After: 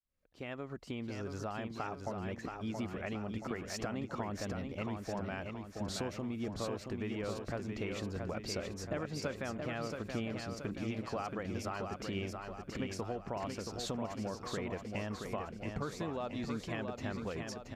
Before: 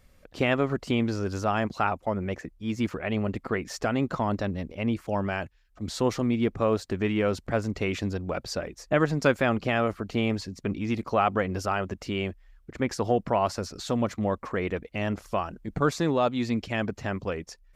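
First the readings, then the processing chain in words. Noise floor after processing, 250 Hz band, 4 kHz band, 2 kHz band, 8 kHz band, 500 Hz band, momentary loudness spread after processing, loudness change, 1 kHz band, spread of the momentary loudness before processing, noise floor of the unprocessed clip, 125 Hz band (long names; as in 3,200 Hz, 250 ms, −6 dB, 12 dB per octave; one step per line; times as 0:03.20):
−51 dBFS, −11.0 dB, −8.5 dB, −12.0 dB, −6.0 dB, −12.0 dB, 3 LU, −11.5 dB, −13.0 dB, 8 LU, −60 dBFS, −10.5 dB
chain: fade in at the beginning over 2.76 s
downward compressor 6 to 1, threshold −34 dBFS, peak gain reduction 17 dB
repeating echo 676 ms, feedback 52%, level −5 dB
level −2.5 dB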